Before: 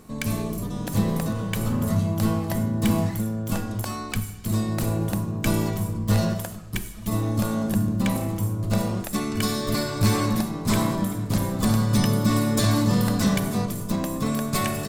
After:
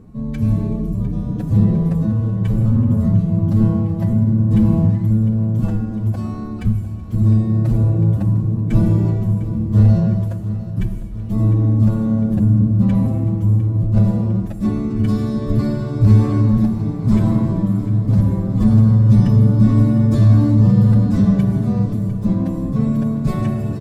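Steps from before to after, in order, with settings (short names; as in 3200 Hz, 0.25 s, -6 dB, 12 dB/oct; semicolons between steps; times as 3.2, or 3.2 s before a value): HPF 120 Hz 6 dB/oct; tilt -4 dB/oct; thin delay 0.236 s, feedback 45%, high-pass 2300 Hz, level -19 dB; time stretch by phase-locked vocoder 1.6×; feedback echo 0.703 s, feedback 60%, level -15 dB; in parallel at -9 dB: overloaded stage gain 11.5 dB; on the sum: low shelf 240 Hz +10 dB; notches 50/100/150/200 Hz; gain -7.5 dB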